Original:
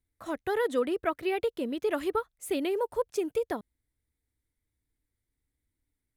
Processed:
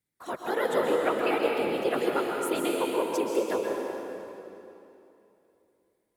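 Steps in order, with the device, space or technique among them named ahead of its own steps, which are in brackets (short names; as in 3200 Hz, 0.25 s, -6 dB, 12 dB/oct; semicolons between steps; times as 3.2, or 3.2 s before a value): whispering ghost (whisperiser; HPF 390 Hz 6 dB/oct; reverb RT60 2.9 s, pre-delay 0.12 s, DRR -1 dB); gain +2 dB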